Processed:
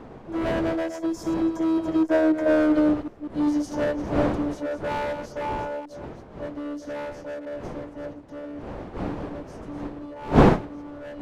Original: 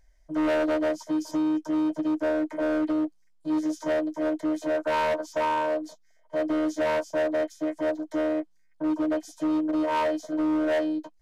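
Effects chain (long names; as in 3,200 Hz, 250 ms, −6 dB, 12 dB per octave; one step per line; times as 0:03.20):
delay that plays each chunk backwards 188 ms, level −9 dB
source passing by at 0:02.56, 22 m/s, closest 20 metres
wind on the microphone 510 Hz −35 dBFS
level +5 dB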